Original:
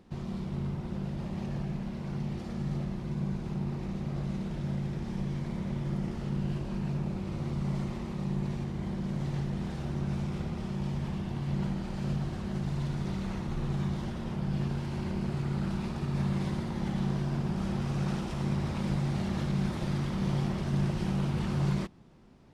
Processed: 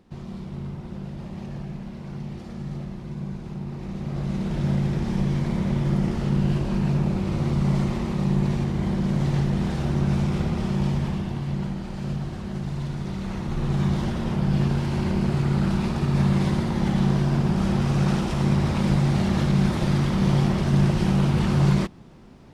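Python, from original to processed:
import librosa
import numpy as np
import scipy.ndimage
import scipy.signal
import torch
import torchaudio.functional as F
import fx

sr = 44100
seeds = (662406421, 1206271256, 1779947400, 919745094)

y = fx.gain(x, sr, db=fx.line((3.67, 0.5), (4.64, 10.0), (10.84, 10.0), (11.65, 3.0), (13.12, 3.0), (13.93, 9.5)))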